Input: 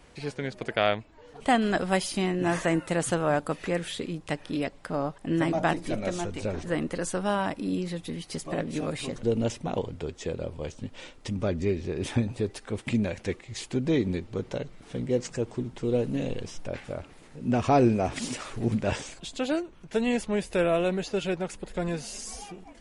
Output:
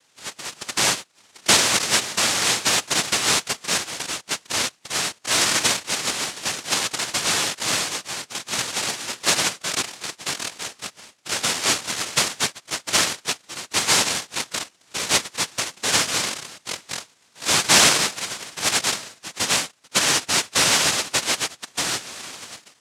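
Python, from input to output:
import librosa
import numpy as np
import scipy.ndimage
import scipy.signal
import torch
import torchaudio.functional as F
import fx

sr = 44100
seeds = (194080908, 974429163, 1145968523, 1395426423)

y = fx.noise_reduce_blind(x, sr, reduce_db=11)
y = fx.noise_vocoder(y, sr, seeds[0], bands=1)
y = y * 10.0 ** (5.5 / 20.0)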